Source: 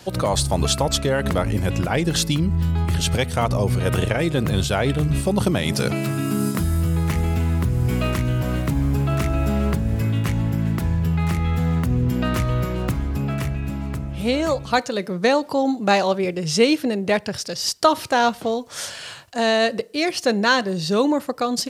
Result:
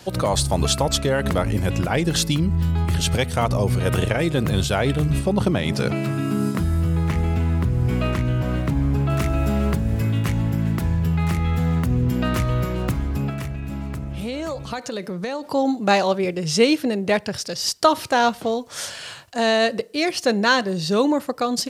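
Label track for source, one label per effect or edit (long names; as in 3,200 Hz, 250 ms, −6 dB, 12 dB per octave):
5.190000	9.100000	low-pass filter 3,500 Hz 6 dB per octave
13.290000	15.480000	downward compressor, threshold −24 dBFS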